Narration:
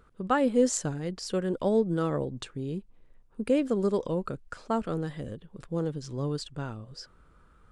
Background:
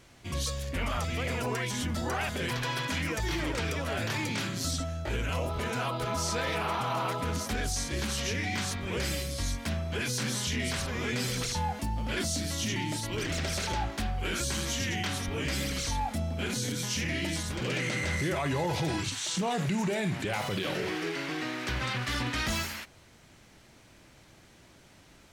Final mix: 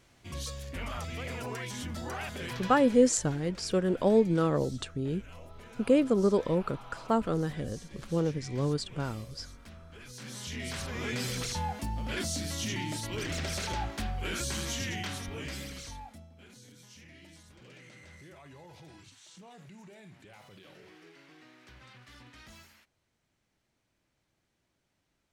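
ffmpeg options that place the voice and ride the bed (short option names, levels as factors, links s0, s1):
-filter_complex "[0:a]adelay=2400,volume=1.19[s0];[1:a]volume=2.99,afade=t=out:st=2.53:d=0.49:silence=0.251189,afade=t=in:st=10.07:d=1:silence=0.16788,afade=t=out:st=14.7:d=1.59:silence=0.105925[s1];[s0][s1]amix=inputs=2:normalize=0"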